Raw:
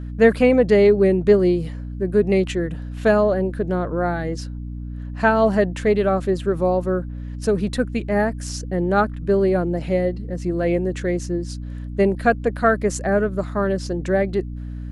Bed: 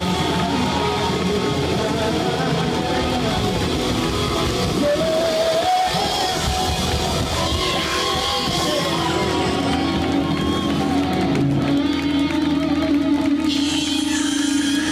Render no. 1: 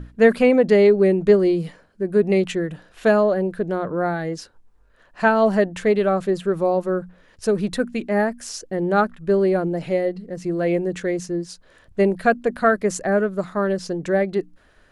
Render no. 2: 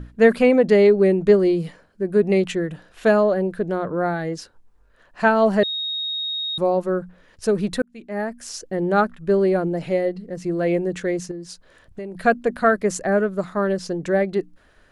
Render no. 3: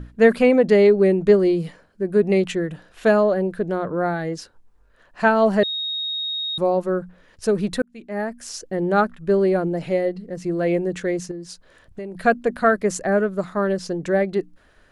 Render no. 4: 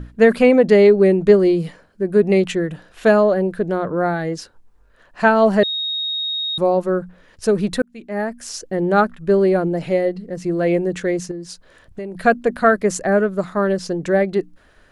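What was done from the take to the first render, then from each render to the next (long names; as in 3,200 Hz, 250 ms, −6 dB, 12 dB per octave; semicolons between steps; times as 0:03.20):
mains-hum notches 60/120/180/240/300 Hz
0:05.63–0:06.58: beep over 3,750 Hz −23.5 dBFS; 0:07.82–0:08.62: fade in; 0:11.31–0:12.15: downward compressor, threshold −30 dBFS
no processing that can be heard
level +3 dB; brickwall limiter −2 dBFS, peak gain reduction 2.5 dB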